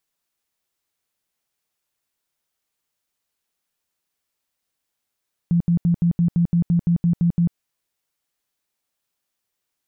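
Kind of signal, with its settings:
tone bursts 171 Hz, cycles 16, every 0.17 s, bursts 12, −14 dBFS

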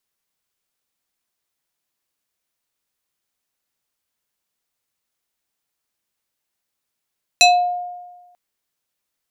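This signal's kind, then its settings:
two-operator FM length 0.94 s, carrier 713 Hz, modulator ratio 4.63, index 2.1, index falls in 0.38 s exponential, decay 1.27 s, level −6 dB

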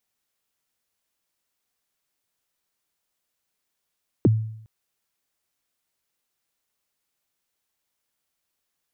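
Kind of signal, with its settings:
synth kick length 0.41 s, from 440 Hz, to 110 Hz, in 26 ms, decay 0.70 s, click off, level −11 dB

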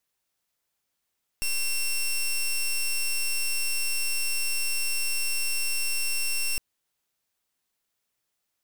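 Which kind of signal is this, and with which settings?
pulse wave 2,720 Hz, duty 13% −26 dBFS 5.16 s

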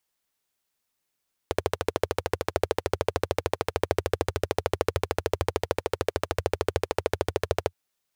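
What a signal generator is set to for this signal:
pulse-train model of a single-cylinder engine, steady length 6.22 s, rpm 1,600, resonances 89/440 Hz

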